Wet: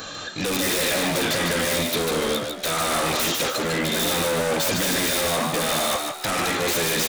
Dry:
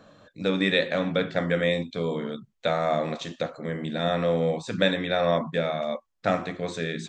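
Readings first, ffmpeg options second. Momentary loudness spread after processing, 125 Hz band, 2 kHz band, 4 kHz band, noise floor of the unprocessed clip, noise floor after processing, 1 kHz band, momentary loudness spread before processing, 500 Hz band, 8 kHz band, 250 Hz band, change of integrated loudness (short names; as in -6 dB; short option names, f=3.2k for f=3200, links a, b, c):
4 LU, -0.5 dB, +5.5 dB, +9.0 dB, -70 dBFS, -35 dBFS, +5.0 dB, 9 LU, +0.5 dB, n/a, +1.5 dB, +4.5 dB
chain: -filter_complex "[0:a]equalizer=f=390:t=o:w=0.42:g=-3,bandreject=f=710:w=12,aecho=1:1:2.5:0.45,acontrast=64,alimiter=limit=-16dB:level=0:latency=1,acontrast=68,aresample=16000,asoftclip=type=tanh:threshold=-24dB,aresample=44100,crystalizer=i=9:c=0,aeval=exprs='0.112*(abs(mod(val(0)/0.112+3,4)-2)-1)':c=same,asplit=6[a][b][c][d][e][f];[b]adelay=149,afreqshift=72,volume=-4.5dB[g];[c]adelay=298,afreqshift=144,volume=-12.7dB[h];[d]adelay=447,afreqshift=216,volume=-20.9dB[i];[e]adelay=596,afreqshift=288,volume=-29dB[j];[f]adelay=745,afreqshift=360,volume=-37.2dB[k];[a][g][h][i][j][k]amix=inputs=6:normalize=0"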